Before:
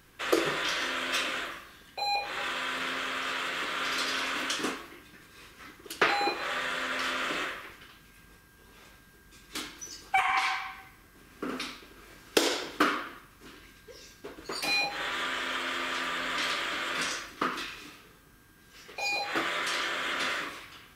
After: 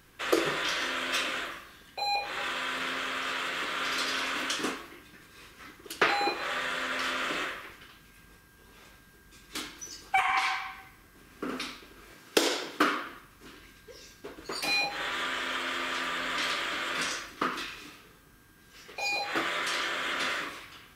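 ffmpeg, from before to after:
-filter_complex "[0:a]asettb=1/sr,asplit=3[s0][s1][s2];[s0]atrim=end=12.134[s3];[s1]atrim=start=12.13:end=13.04,asetpts=PTS-STARTPTS,afade=t=in:d=0.004:c=qsin,afade=t=out:st=0.906:d=0.004:c=qsin,highpass=120[s4];[s2]atrim=start=13.036[s5];[s3][s4]acrossfade=d=0.004:c1=hsin:c2=qsin[s6];[s6][s5]acrossfade=d=0.004:c1=qsin:c2=hsin"

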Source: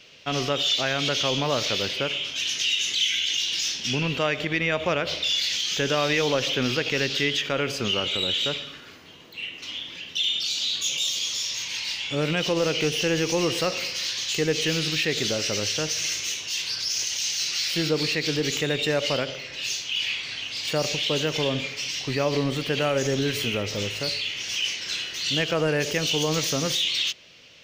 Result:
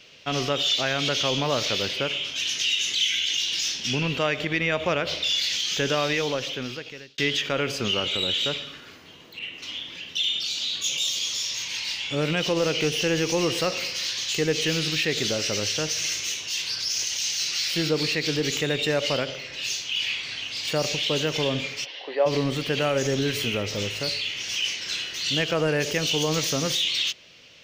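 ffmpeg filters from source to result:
-filter_complex "[0:a]asettb=1/sr,asplit=3[s0][s1][s2];[s0]atrim=end=9.394[s3];[s1]atrim=start=9.39:end=10.84,asetpts=PTS-STARTPTS,afade=t=in:d=0.004:c=qsin,afade=t=out:st=1.446:d=0.004:c=qsin,adynamicequalizer=threshold=0.0178:dfrequency=3600:dqfactor=0.7:tfrequency=3600:tqfactor=0.7:attack=5:release=100:ratio=0.375:range=2.5:mode=cutabove:tftype=highshelf[s4];[s2]atrim=start=10.836[s5];[s3][s4]acrossfade=d=0.004:c1=hsin:c2=qsin[s6];[s6][s5]acrossfade=d=0.004:c1=qsin:c2=hsin,asplit=3[s7][s8][s9];[s7]afade=t=out:st=21.84:d=0.02[s10];[s8]highpass=f=390:w=0.5412,highpass=f=390:w=1.3066,equalizer=f=550:t=q:w=4:g=7,equalizer=f=790:t=q:w=4:g=6,equalizer=f=1300:t=q:w=4:g=-7,equalizer=f=2400:t=q:w=4:g=-10,lowpass=f=3100:w=0.5412,lowpass=f=3100:w=1.3066,afade=t=in:st=21.84:d=0.02,afade=t=out:st=22.25:d=0.02[s11];[s9]afade=t=in:st=22.25:d=0.02[s12];[s10][s11][s12]amix=inputs=3:normalize=0,asplit=2[s13][s14];[s13]atrim=end=7.18,asetpts=PTS-STARTPTS,afade=t=out:st=5.88:d=1.3[s15];[s14]atrim=start=7.18,asetpts=PTS-STARTPTS,afade=t=in:d=0.004:c=hsin[s16];[s15][s16]concat=n=2:v=0:a=1"

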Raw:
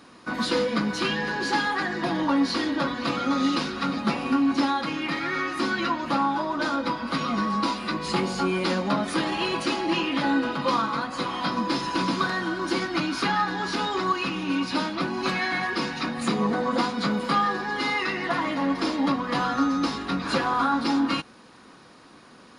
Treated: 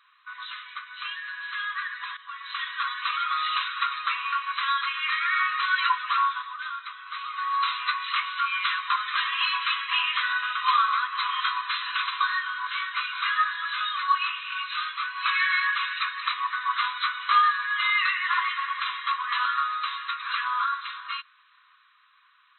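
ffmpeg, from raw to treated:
-filter_complex "[0:a]asettb=1/sr,asplit=3[s0][s1][s2];[s0]atrim=end=12.104[s3];[s1]atrim=start=12.1:end=15.16,asetpts=PTS-STARTPTS,afade=t=in:d=0.004:c=qsin,afade=t=out:st=3.056:d=0.004:c=qsin,flanger=delay=18:depth=3.7:speed=1.2[s4];[s2]atrim=start=15.156[s5];[s3][s4]acrossfade=d=0.004:c1=hsin:c2=qsin[s6];[s6][s5]acrossfade=d=0.004:c1=qsin:c2=hsin,asplit=4[s7][s8][s9][s10];[s7]atrim=end=2.17,asetpts=PTS-STARTPTS,afade=t=out:st=2.166:d=0.004:c=hsin:silence=0.16788[s11];[s8]atrim=start=2.17:end=6.61,asetpts=PTS-STARTPTS,afade=t=in:d=0.47:silence=0.16788,afade=t=out:st=4.06:d=0.38:silence=0.334965[s12];[s9]atrim=start=6.61:end=7.3,asetpts=PTS-STARTPTS,volume=0.335[s13];[s10]atrim=start=7.3,asetpts=PTS-STARTPTS,afade=t=in:d=0.38:silence=0.334965[s14];[s11][s12][s13][s14]concat=n=4:v=0:a=1,afftfilt=real='re*between(b*sr/4096,1000,4100)':imag='im*between(b*sr/4096,1000,4100)':win_size=4096:overlap=0.75,dynaudnorm=f=240:g=21:m=4.22,volume=0.473"

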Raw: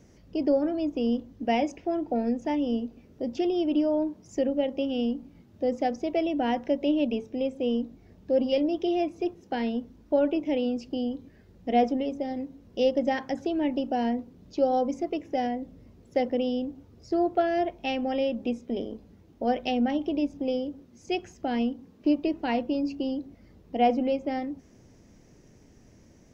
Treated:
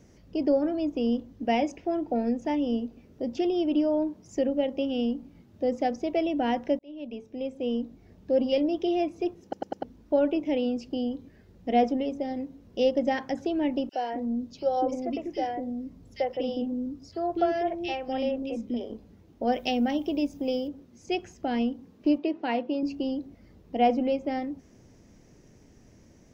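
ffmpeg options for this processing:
-filter_complex "[0:a]asettb=1/sr,asplit=3[s0][s1][s2];[s0]atrim=end=13.894[s3];[s1]atrim=start=13.89:end=18.9,asetpts=PTS-STARTPTS,afade=t=in:d=0.004:c=qsin,afade=t=out:st=5.006:d=0.004:c=qsin,acrossover=split=390|2300[s4][s5][s6];[s5]adelay=40[s7];[s4]adelay=240[s8];[s8][s7][s6]amix=inputs=3:normalize=0,atrim=end_sample=220941[s9];[s2]atrim=start=18.896[s10];[s3][s9]acrossfade=d=0.004:c1=hsin:c2=qsin[s11];[s11][s10]acrossfade=d=0.004:c1=qsin:c2=hsin,asettb=1/sr,asplit=3[s12][s13][s14];[s12]atrim=end=19.524[s15];[s13]atrim=start=19.52:end=20.68,asetpts=PTS-STARTPTS,afade=t=in:d=0.004:c=qsin,afade=t=out:st=1.156:d=0.004:c=qsin,aemphasis=mode=production:type=50fm[s16];[s14]atrim=start=20.676[s17];[s15][s16]acrossfade=d=0.004:c1=hsin:c2=qsin[s18];[s18][s17]acrossfade=d=0.004:c1=qsin:c2=hsin,asettb=1/sr,asplit=3[s19][s20][s21];[s19]atrim=end=22.184[s22];[s20]atrim=start=22.18:end=22.83,asetpts=PTS-STARTPTS,afade=t=in:d=0.004:c=qsin,afade=t=out:st=0.646:d=0.004:c=qsin,highpass=240,lowpass=4300[s23];[s21]atrim=start=22.826[s24];[s22][s23]acrossfade=d=0.004:c1=hsin:c2=qsin[s25];[s25][s24]acrossfade=d=0.004:c1=qsin:c2=hsin,asplit=6[s26][s27][s28][s29][s30][s31];[s26]atrim=end=6.79,asetpts=PTS-STARTPTS,afade=t=out:st=6.786:d=0.004:c=hsin[s32];[s27]atrim=start=6.79:end=9.532,asetpts=PTS-STARTPTS,afade=t=in:d=1.58:c=qsin[s33];[s28]atrim=start=9.428:end=9.532[s34];[s29]atrim=start=9.428:end=9.532[s35];[s30]atrim=start=9.428:end=9.532[s36];[s31]atrim=start=9.828[s37];[s32][s33]concat=n=2:v=0:a=1[s38];[s38][s34]acrossfade=d=0.004:c1=hsin:c2=hsin[s39];[s39][s35]acrossfade=d=0.004:c1=hsin:c2=hsin[s40];[s40][s36]acrossfade=d=0.004:c1=hsin:c2=hsin[s41];[s41][s37]acrossfade=d=0.004:c1=hsin:c2=hsin"

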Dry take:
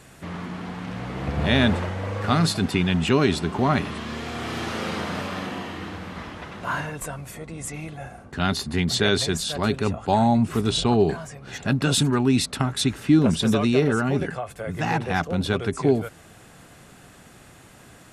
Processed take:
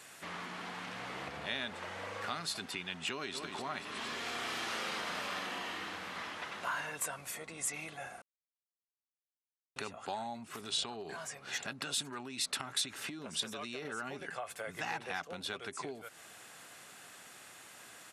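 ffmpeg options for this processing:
-filter_complex "[0:a]asplit=2[s0][s1];[s1]afade=t=in:st=3.11:d=0.01,afade=t=out:st=3.57:d=0.01,aecho=0:1:230|460|690|920|1150|1380|1610:0.354813|0.212888|0.127733|0.0766397|0.0459838|0.0275903|0.0165542[s2];[s0][s2]amix=inputs=2:normalize=0,asettb=1/sr,asplit=3[s3][s4][s5];[s3]atrim=end=10.444[s6];[s4]atrim=start=10.44:end=13.85,asetpts=PTS-STARTPTS,afade=t=in:d=0.004:c=qsin,afade=t=out:st=3.406:d=0.004:c=qsin,acompressor=threshold=0.0794:ratio=6:attack=3.2:release=140:knee=1:detection=peak[s7];[s5]atrim=start=13.846[s8];[s6][s7]acrossfade=d=0.004:c1=hsin:c2=qsin[s9];[s9][s8]acrossfade=d=0.004:c1=qsin:c2=hsin,asplit=3[s10][s11][s12];[s10]atrim=end=8.22,asetpts=PTS-STARTPTS,afade=t=out:st=8.216:d=0.004:c=hsin[s13];[s11]atrim=start=8.22:end=9.76,asetpts=PTS-STARTPTS,volume=0[s14];[s12]atrim=start=9.76,asetpts=PTS-STARTPTS,afade=t=in:d=0.004:c=hsin[s15];[s13][s14][s15]concat=n=3:v=0:a=1,acompressor=threshold=0.0355:ratio=6,highpass=f=1300:p=1"

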